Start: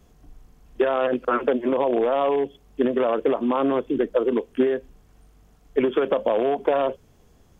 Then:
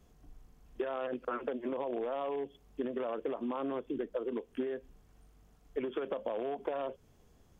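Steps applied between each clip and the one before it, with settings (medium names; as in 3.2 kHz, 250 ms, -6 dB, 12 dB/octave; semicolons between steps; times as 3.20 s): compression 3:1, threshold -27 dBFS, peak gain reduction 9 dB; trim -7.5 dB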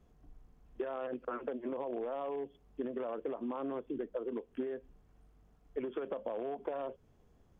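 treble shelf 3 kHz -10.5 dB; trim -2 dB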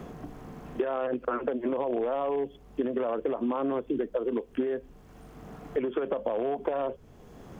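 three bands compressed up and down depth 70%; trim +9 dB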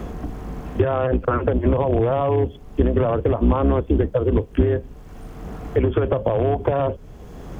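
octave divider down 2 oct, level +4 dB; trim +8.5 dB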